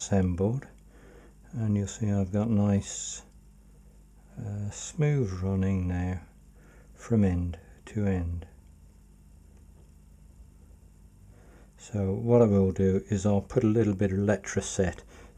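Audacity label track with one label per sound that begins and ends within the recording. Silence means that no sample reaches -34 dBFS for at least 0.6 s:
1.540000	3.190000	sound
4.380000	6.180000	sound
7.050000	8.430000	sound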